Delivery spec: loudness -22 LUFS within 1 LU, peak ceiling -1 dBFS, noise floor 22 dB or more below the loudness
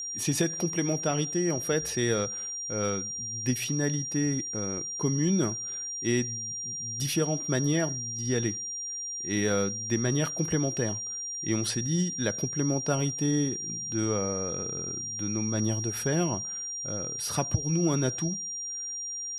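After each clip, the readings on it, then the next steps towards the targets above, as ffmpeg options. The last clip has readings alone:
steady tone 5700 Hz; tone level -33 dBFS; loudness -28.5 LUFS; peak -12.0 dBFS; loudness target -22.0 LUFS
-> -af "bandreject=f=5.7k:w=30"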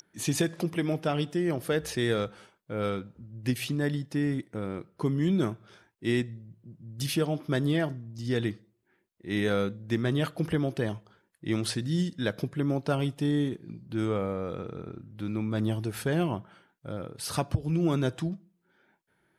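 steady tone none; loudness -30.5 LUFS; peak -13.0 dBFS; loudness target -22.0 LUFS
-> -af "volume=8.5dB"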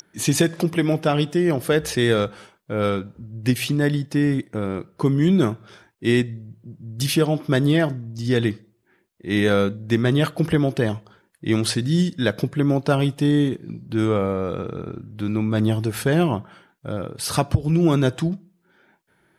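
loudness -22.0 LUFS; peak -4.5 dBFS; noise floor -64 dBFS

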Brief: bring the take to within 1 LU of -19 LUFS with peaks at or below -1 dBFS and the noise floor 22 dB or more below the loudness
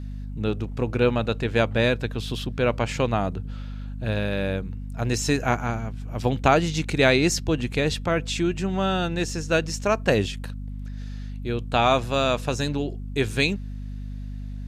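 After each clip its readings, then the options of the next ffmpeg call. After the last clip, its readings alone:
hum 50 Hz; harmonics up to 250 Hz; hum level -31 dBFS; loudness -24.5 LUFS; peak -4.5 dBFS; loudness target -19.0 LUFS
-> -af "bandreject=f=50:t=h:w=6,bandreject=f=100:t=h:w=6,bandreject=f=150:t=h:w=6,bandreject=f=200:t=h:w=6,bandreject=f=250:t=h:w=6"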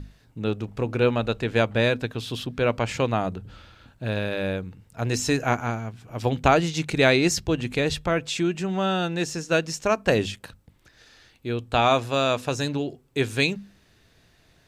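hum none; loudness -24.5 LUFS; peak -4.0 dBFS; loudness target -19.0 LUFS
-> -af "volume=5.5dB,alimiter=limit=-1dB:level=0:latency=1"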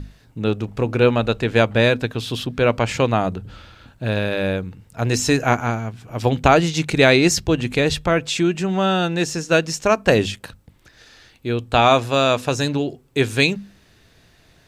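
loudness -19.5 LUFS; peak -1.0 dBFS; noise floor -55 dBFS

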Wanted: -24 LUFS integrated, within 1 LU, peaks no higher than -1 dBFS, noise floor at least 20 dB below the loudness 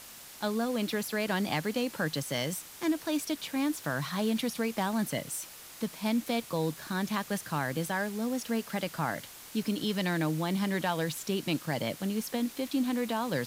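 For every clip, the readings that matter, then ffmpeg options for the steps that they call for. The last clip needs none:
noise floor -49 dBFS; noise floor target -52 dBFS; loudness -32.0 LUFS; peak -15.0 dBFS; loudness target -24.0 LUFS
-> -af "afftdn=nr=6:nf=-49"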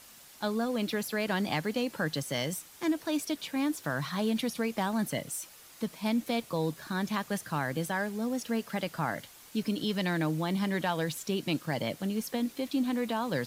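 noise floor -53 dBFS; loudness -32.0 LUFS; peak -15.0 dBFS; loudness target -24.0 LUFS
-> -af "volume=8dB"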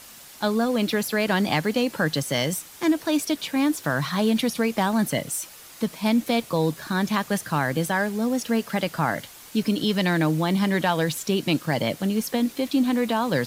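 loudness -24.0 LUFS; peak -7.0 dBFS; noise floor -45 dBFS

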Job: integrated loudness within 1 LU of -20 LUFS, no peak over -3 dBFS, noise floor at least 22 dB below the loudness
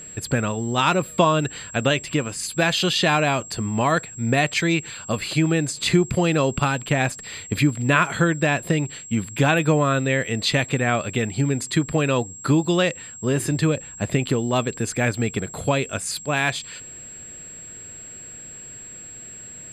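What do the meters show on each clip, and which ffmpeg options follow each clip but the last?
steady tone 7600 Hz; tone level -37 dBFS; loudness -22.0 LUFS; peak -3.0 dBFS; loudness target -20.0 LUFS
-> -af "bandreject=f=7.6k:w=30"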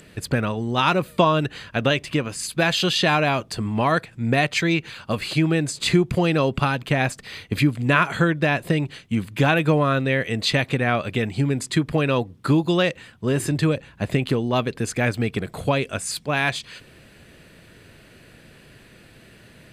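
steady tone none; loudness -22.0 LUFS; peak -3.0 dBFS; loudness target -20.0 LUFS
-> -af "volume=2dB,alimiter=limit=-3dB:level=0:latency=1"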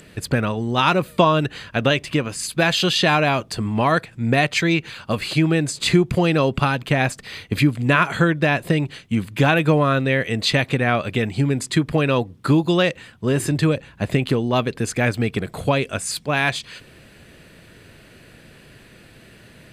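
loudness -20.0 LUFS; peak -3.0 dBFS; noise floor -48 dBFS

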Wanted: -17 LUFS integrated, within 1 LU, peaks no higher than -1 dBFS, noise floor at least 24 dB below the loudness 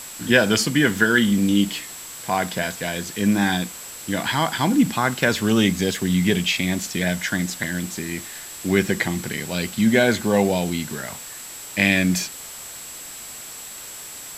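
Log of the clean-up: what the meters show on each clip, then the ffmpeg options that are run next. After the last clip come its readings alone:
steady tone 7700 Hz; tone level -38 dBFS; noise floor -37 dBFS; noise floor target -45 dBFS; loudness -21.0 LUFS; peak -1.0 dBFS; loudness target -17.0 LUFS
-> -af "bandreject=f=7.7k:w=30"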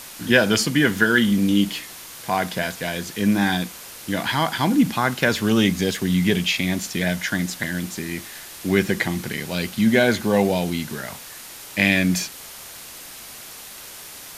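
steady tone none; noise floor -39 dBFS; noise floor target -45 dBFS
-> -af "afftdn=nr=6:nf=-39"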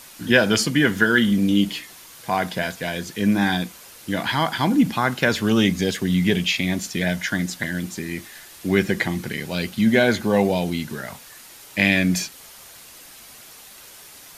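noise floor -44 dBFS; noise floor target -45 dBFS
-> -af "afftdn=nr=6:nf=-44"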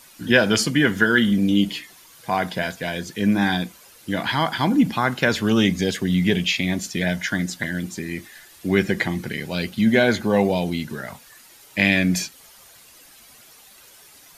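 noise floor -49 dBFS; loudness -21.0 LUFS; peak -1.0 dBFS; loudness target -17.0 LUFS
-> -af "volume=4dB,alimiter=limit=-1dB:level=0:latency=1"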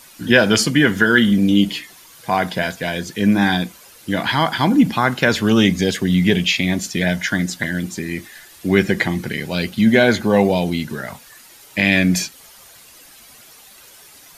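loudness -17.5 LUFS; peak -1.0 dBFS; noise floor -45 dBFS

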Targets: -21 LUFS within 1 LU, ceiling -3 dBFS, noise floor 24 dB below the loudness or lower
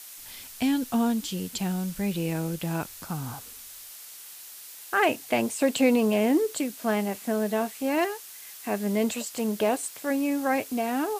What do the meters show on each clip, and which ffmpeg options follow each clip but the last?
noise floor -44 dBFS; noise floor target -51 dBFS; loudness -27.0 LUFS; peak -10.0 dBFS; loudness target -21.0 LUFS
-> -af "afftdn=nr=7:nf=-44"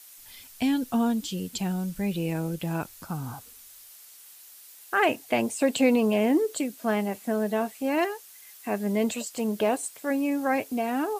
noise floor -50 dBFS; noise floor target -51 dBFS
-> -af "afftdn=nr=6:nf=-50"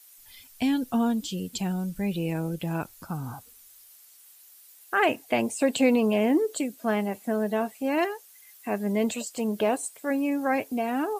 noise floor -53 dBFS; loudness -27.0 LUFS; peak -10.0 dBFS; loudness target -21.0 LUFS
-> -af "volume=6dB"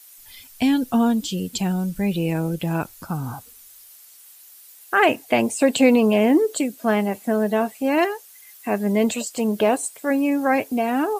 loudness -21.0 LUFS; peak -4.0 dBFS; noise floor -47 dBFS

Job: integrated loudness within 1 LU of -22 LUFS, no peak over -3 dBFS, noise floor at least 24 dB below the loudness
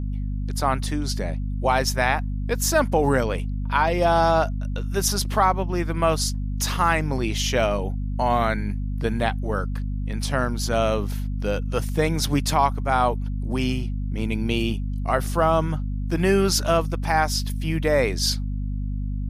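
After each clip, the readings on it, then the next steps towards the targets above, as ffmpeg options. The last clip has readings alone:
hum 50 Hz; harmonics up to 250 Hz; hum level -24 dBFS; loudness -23.5 LUFS; peak -5.0 dBFS; loudness target -22.0 LUFS
-> -af "bandreject=f=50:t=h:w=6,bandreject=f=100:t=h:w=6,bandreject=f=150:t=h:w=6,bandreject=f=200:t=h:w=6,bandreject=f=250:t=h:w=6"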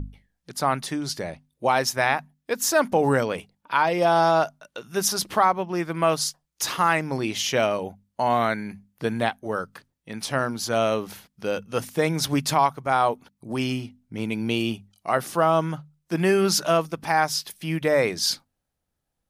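hum none; loudness -24.0 LUFS; peak -6.0 dBFS; loudness target -22.0 LUFS
-> -af "volume=2dB"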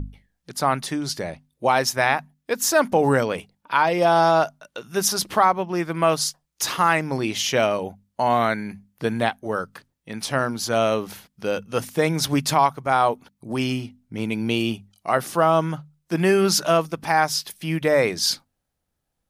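loudness -22.0 LUFS; peak -4.0 dBFS; noise floor -77 dBFS

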